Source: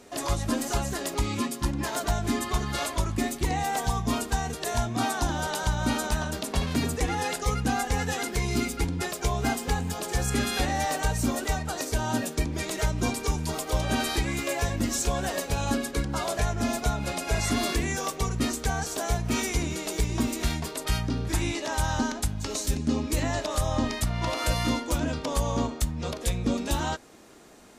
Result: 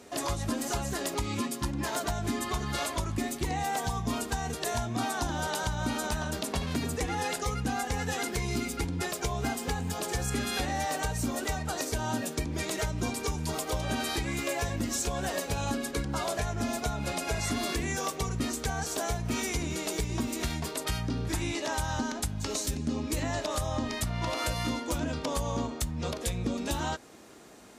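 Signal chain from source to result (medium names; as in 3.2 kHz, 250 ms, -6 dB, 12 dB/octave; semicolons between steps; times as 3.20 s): high-pass 50 Hz; compression, threshold -27 dBFS, peak gain reduction 7 dB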